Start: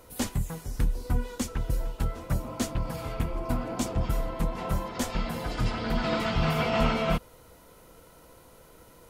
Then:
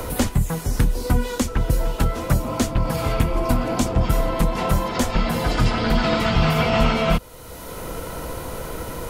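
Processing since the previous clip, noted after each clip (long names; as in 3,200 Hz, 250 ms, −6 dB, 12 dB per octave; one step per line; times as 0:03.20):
multiband upward and downward compressor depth 70%
level +8.5 dB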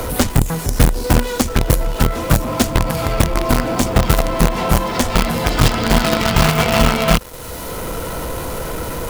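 in parallel at −5.5 dB: log-companded quantiser 2 bits
on the sum: boost into a limiter +2 dB
level −1 dB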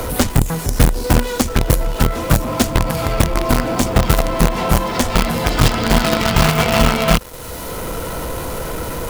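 no processing that can be heard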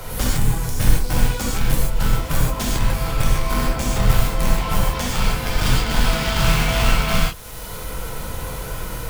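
sub-octave generator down 2 octaves, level +3 dB
parametric band 280 Hz −7 dB 2.7 octaves
reverb whose tail is shaped and stops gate 170 ms flat, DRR −6 dB
level −10.5 dB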